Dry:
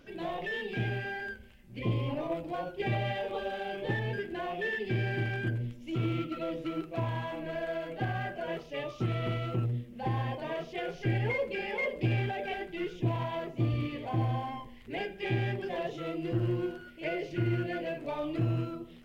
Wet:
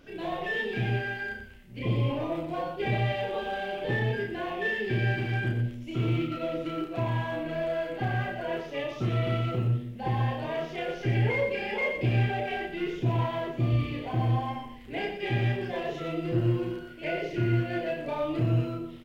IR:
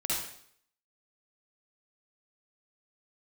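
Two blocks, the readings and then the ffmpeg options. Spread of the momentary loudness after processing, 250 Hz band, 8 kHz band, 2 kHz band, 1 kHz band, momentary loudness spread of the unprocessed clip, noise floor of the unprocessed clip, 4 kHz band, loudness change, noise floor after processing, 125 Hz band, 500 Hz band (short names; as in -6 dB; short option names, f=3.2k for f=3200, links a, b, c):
7 LU, +3.0 dB, n/a, +4.0 dB, +3.5 dB, 6 LU, -50 dBFS, +3.5 dB, +4.0 dB, -42 dBFS, +4.5 dB, +3.5 dB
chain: -filter_complex "[0:a]aecho=1:1:32.07|119.5:0.794|0.447,asplit=2[a][b];[1:a]atrim=start_sample=2205[c];[b][c]afir=irnorm=-1:irlink=0,volume=-18.5dB[d];[a][d]amix=inputs=2:normalize=0"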